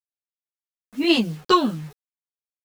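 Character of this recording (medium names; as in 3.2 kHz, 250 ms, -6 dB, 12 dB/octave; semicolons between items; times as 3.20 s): tremolo triangle 5.4 Hz, depth 40%; a quantiser's noise floor 8-bit, dither none; a shimmering, thickened sound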